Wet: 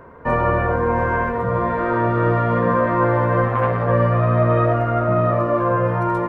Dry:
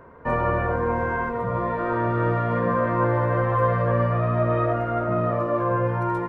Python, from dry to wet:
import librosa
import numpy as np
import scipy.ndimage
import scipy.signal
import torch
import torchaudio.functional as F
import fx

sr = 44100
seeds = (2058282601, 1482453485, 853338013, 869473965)

y = x + 10.0 ** (-12.5 / 20.0) * np.pad(x, (int(689 * sr / 1000.0), 0))[:len(x)]
y = fx.transformer_sat(y, sr, knee_hz=580.0, at=(3.48, 3.89))
y = F.gain(torch.from_numpy(y), 4.5).numpy()